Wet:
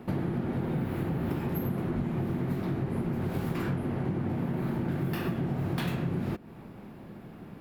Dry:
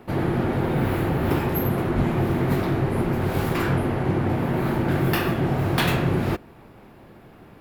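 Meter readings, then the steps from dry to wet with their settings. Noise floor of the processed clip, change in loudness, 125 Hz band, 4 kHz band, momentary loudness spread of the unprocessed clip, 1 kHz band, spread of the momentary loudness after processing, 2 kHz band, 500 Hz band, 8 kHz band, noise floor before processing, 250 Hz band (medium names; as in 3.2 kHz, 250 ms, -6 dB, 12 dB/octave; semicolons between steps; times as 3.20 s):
-47 dBFS, -8.0 dB, -7.5 dB, -13.5 dB, 2 LU, -12.5 dB, 15 LU, -13.0 dB, -10.5 dB, under -10 dB, -48 dBFS, -6.5 dB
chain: peaking EQ 190 Hz +9 dB 1.3 oct; compression 6:1, threshold -25 dBFS, peak gain reduction 13 dB; trim -3 dB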